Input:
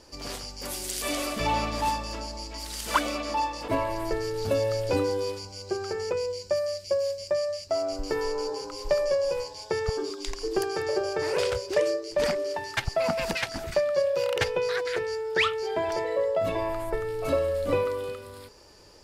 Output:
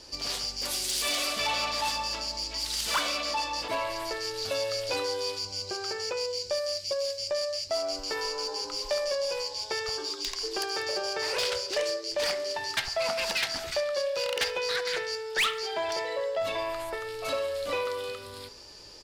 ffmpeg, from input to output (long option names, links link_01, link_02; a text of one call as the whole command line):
ffmpeg -i in.wav -filter_complex "[0:a]equalizer=frequency=4200:width_type=o:width=1.6:gain=9,bandreject=frequency=80.03:width_type=h:width=4,bandreject=frequency=160.06:width_type=h:width=4,bandreject=frequency=240.09:width_type=h:width=4,bandreject=frequency=320.12:width_type=h:width=4,bandreject=frequency=400.15:width_type=h:width=4,bandreject=frequency=480.18:width_type=h:width=4,bandreject=frequency=560.21:width_type=h:width=4,bandreject=frequency=640.24:width_type=h:width=4,bandreject=frequency=720.27:width_type=h:width=4,bandreject=frequency=800.3:width_type=h:width=4,bandreject=frequency=880.33:width_type=h:width=4,bandreject=frequency=960.36:width_type=h:width=4,bandreject=frequency=1040.39:width_type=h:width=4,bandreject=frequency=1120.42:width_type=h:width=4,bandreject=frequency=1200.45:width_type=h:width=4,bandreject=frequency=1280.48:width_type=h:width=4,bandreject=frequency=1360.51:width_type=h:width=4,bandreject=frequency=1440.54:width_type=h:width=4,bandreject=frequency=1520.57:width_type=h:width=4,bandreject=frequency=1600.6:width_type=h:width=4,bandreject=frequency=1680.63:width_type=h:width=4,bandreject=frequency=1760.66:width_type=h:width=4,bandreject=frequency=1840.69:width_type=h:width=4,bandreject=frequency=1920.72:width_type=h:width=4,bandreject=frequency=2000.75:width_type=h:width=4,bandreject=frequency=2080.78:width_type=h:width=4,bandreject=frequency=2160.81:width_type=h:width=4,bandreject=frequency=2240.84:width_type=h:width=4,acrossover=split=510[link_01][link_02];[link_01]acompressor=threshold=-43dB:ratio=12[link_03];[link_03][link_02]amix=inputs=2:normalize=0,asoftclip=type=tanh:threshold=-21.5dB,aecho=1:1:69|138|207|276|345:0.112|0.0617|0.0339|0.0187|0.0103" out.wav